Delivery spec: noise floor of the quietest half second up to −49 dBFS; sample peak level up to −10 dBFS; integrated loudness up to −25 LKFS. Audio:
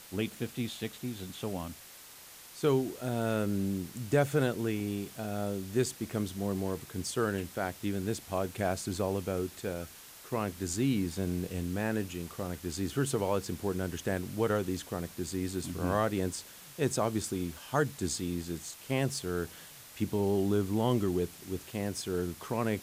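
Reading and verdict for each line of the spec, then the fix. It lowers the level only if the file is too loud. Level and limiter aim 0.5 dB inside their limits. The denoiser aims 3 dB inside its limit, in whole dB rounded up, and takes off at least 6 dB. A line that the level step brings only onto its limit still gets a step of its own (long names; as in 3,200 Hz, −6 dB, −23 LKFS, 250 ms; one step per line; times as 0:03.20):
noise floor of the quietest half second −51 dBFS: in spec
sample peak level −14.5 dBFS: in spec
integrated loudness −33.5 LKFS: in spec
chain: no processing needed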